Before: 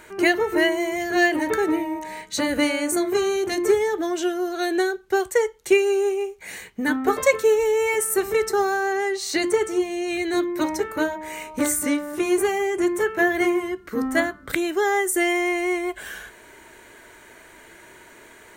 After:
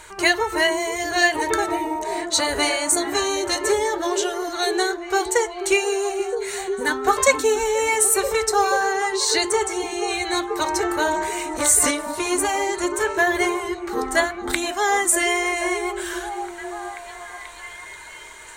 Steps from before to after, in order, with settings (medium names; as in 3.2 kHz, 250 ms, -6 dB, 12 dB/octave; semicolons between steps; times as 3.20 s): bass shelf 180 Hz +11.5 dB; repeats whose band climbs or falls 485 ms, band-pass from 270 Hz, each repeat 0.7 oct, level -3 dB; flange 0.67 Hz, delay 0.3 ms, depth 4.7 ms, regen -64%; ten-band graphic EQ 125 Hz -5 dB, 250 Hz -11 dB, 1 kHz +9 dB, 4 kHz +8 dB, 8 kHz +11 dB; 10.76–11.91 s: decay stretcher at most 27 dB/s; trim +2 dB